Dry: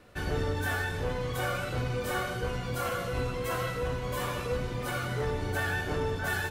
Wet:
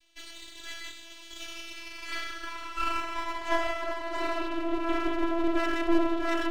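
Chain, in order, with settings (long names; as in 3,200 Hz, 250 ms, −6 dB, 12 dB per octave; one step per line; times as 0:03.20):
channel vocoder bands 32, saw 334 Hz
high-pass filter sweep 3,300 Hz → 320 Hz, 0:01.49–0:04.63
half-wave rectification
level +5 dB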